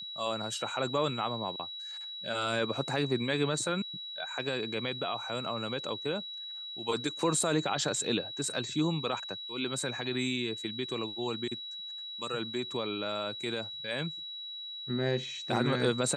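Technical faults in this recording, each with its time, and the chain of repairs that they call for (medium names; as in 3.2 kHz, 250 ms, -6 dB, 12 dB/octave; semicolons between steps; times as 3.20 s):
whine 3.9 kHz -39 dBFS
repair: band-stop 3.9 kHz, Q 30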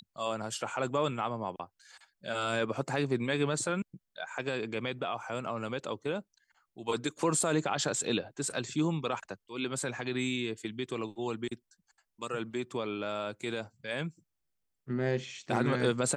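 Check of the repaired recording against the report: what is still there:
nothing left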